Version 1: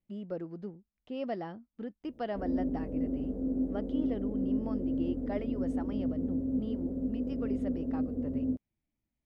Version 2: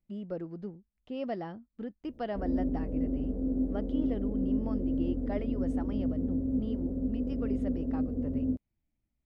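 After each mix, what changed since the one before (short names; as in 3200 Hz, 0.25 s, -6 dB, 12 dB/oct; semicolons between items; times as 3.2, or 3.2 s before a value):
master: add low shelf 88 Hz +9 dB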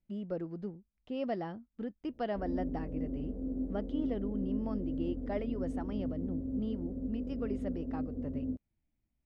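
background -6.0 dB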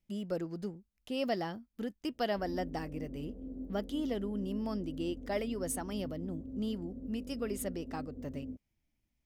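speech: remove tape spacing loss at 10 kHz 33 dB; background -7.0 dB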